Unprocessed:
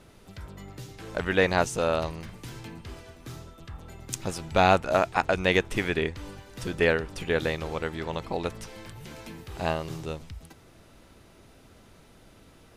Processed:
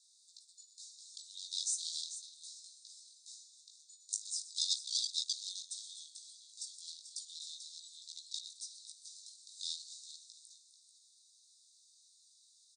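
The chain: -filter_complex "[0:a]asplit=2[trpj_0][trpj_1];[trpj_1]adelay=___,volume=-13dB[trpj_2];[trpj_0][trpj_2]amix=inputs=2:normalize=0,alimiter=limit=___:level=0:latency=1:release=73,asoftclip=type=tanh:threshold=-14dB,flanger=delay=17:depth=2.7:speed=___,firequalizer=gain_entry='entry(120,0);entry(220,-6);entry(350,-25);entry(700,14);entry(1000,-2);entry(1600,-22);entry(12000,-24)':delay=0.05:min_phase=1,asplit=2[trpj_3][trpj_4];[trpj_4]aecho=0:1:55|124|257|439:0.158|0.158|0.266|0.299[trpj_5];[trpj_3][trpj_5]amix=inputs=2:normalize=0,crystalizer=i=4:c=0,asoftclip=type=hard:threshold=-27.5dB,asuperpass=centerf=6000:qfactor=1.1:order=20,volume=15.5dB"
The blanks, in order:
19, -12.5dB, 0.37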